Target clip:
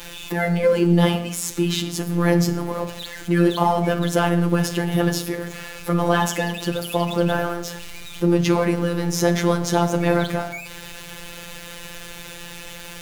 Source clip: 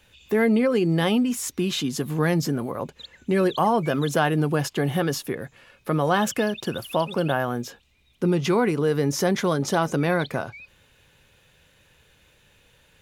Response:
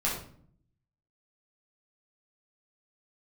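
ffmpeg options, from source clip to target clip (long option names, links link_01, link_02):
-filter_complex "[0:a]aeval=exprs='val(0)+0.5*0.0224*sgn(val(0))':channel_layout=same,asplit=2[link_01][link_02];[1:a]atrim=start_sample=2205,atrim=end_sample=6174,asetrate=28665,aresample=44100[link_03];[link_02][link_03]afir=irnorm=-1:irlink=0,volume=-16.5dB[link_04];[link_01][link_04]amix=inputs=2:normalize=0,afftfilt=real='hypot(re,im)*cos(PI*b)':imag='0':win_size=1024:overlap=0.75,volume=2.5dB"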